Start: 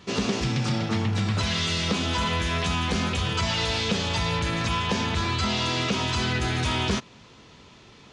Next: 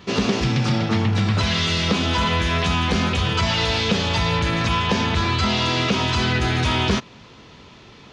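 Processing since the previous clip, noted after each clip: peaking EQ 8.6 kHz -8.5 dB 0.82 oct; trim +5.5 dB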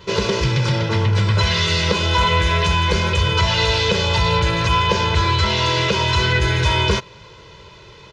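comb 2 ms, depth 98%

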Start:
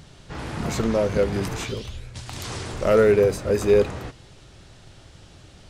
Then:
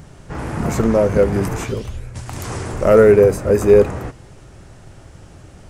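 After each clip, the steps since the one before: peaking EQ 3.8 kHz -12.5 dB 1.2 oct; trim +7 dB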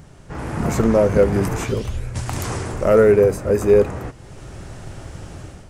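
level rider gain up to 10 dB; trim -3.5 dB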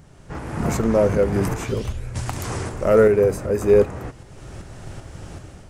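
tremolo saw up 2.6 Hz, depth 45%

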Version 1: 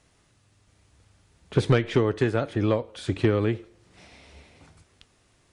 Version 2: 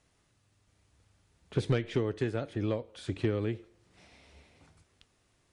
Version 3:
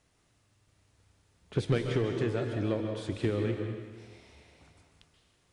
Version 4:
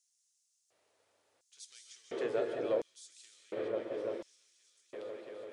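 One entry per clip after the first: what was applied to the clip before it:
dynamic bell 1.1 kHz, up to -5 dB, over -39 dBFS, Q 1.1; trim -7.5 dB
plate-style reverb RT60 1.4 s, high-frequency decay 0.9×, pre-delay 120 ms, DRR 3.5 dB
delay with an opening low-pass 339 ms, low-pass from 200 Hz, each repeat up 1 oct, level 0 dB; LFO high-pass square 0.71 Hz 540–6300 Hz; trim -4.5 dB

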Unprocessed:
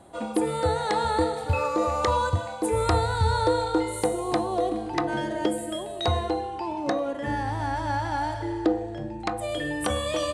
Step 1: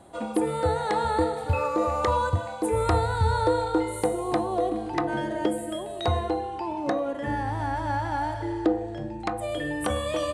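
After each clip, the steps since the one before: dynamic bell 5.3 kHz, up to -6 dB, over -47 dBFS, Q 0.75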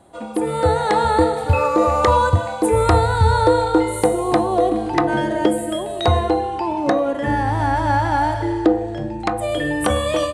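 level rider gain up to 10 dB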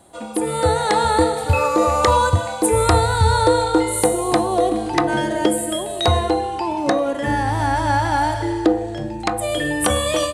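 treble shelf 3.6 kHz +10.5 dB; trim -1 dB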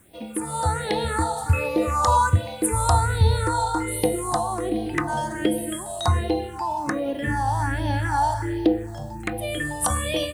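bit crusher 9-bit; phase shifter stages 4, 1.3 Hz, lowest notch 360–1300 Hz; trim -2 dB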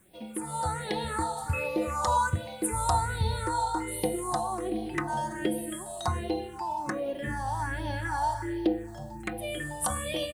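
comb 5.4 ms, depth 44%; trim -7 dB

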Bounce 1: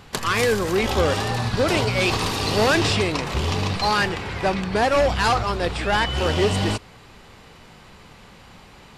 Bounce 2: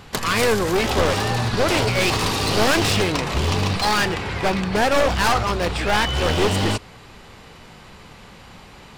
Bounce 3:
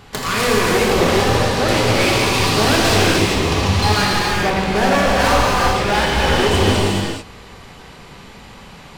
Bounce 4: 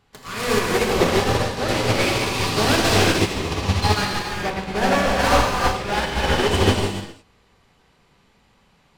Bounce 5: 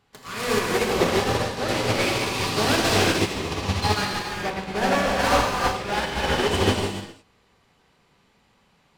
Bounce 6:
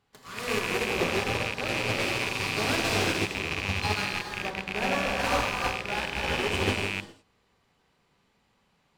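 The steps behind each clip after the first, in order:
one-sided wavefolder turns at -19.5 dBFS; trim +3 dB
reverberation, pre-delay 3 ms, DRR -4.5 dB; trim -1.5 dB
upward expansion 2.5:1, over -25 dBFS
bass shelf 63 Hz -8.5 dB; trim -2.5 dB
rattle on loud lows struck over -34 dBFS, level -11 dBFS; trim -7 dB

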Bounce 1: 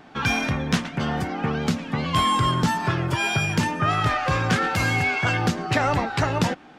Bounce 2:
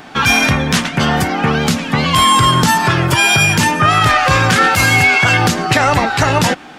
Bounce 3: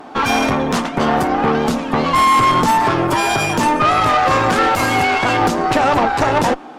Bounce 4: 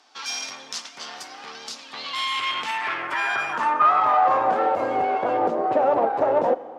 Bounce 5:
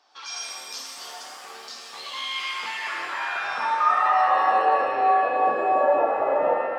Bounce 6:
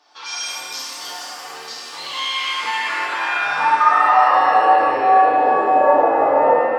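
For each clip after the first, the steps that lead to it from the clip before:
FFT filter 380 Hz 0 dB, 5.8 kHz +7 dB, 11 kHz +12 dB; loudness maximiser +11 dB; trim -1 dB
high-order bell 540 Hz +11.5 dB 2.7 oct; valve stage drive 3 dB, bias 0.65; trim -5.5 dB
band-pass sweep 5.3 kHz -> 550 Hz, 1.65–4.83 s; Schroeder reverb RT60 1.5 s, combs from 33 ms, DRR 16.5 dB
resonances exaggerated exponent 1.5; pitch-shifted reverb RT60 1.9 s, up +7 st, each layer -8 dB, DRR -2 dB; trim -6.5 dB
FDN reverb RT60 0.91 s, low-frequency decay 1.3×, high-frequency decay 0.85×, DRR -1.5 dB; trim +3.5 dB

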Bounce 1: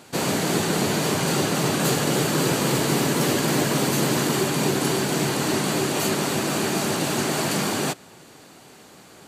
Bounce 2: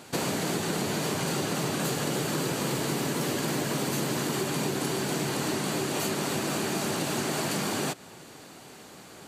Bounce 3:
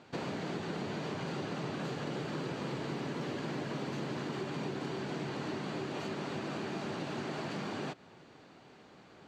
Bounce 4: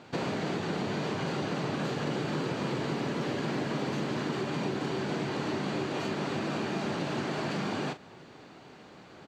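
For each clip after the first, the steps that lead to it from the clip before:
compression, threshold -26 dBFS, peak gain reduction 8.5 dB
distance through air 180 m; trim -7.5 dB
doubling 40 ms -11 dB; trim +5.5 dB

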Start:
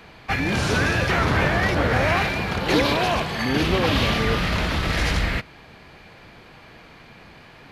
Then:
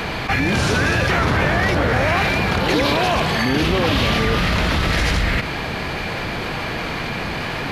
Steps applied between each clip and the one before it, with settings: level flattener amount 70%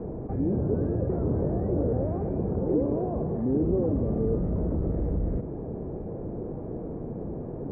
four-pole ladder low-pass 540 Hz, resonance 35%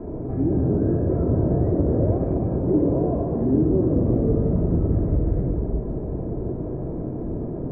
simulated room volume 3300 m³, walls mixed, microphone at 2.9 m

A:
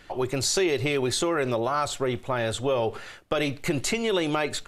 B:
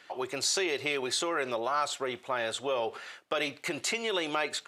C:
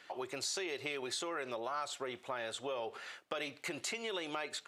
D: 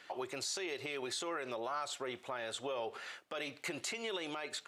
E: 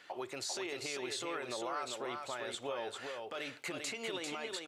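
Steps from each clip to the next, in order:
frequency weighting A; trim -3 dB
compression 2:1, threshold -38 dBFS, peak gain reduction 7.5 dB; trim -2.5 dB
peak limiter -30 dBFS, peak gain reduction 7.5 dB; trim +1 dB
delay 396 ms -4.5 dB; trim -1 dB

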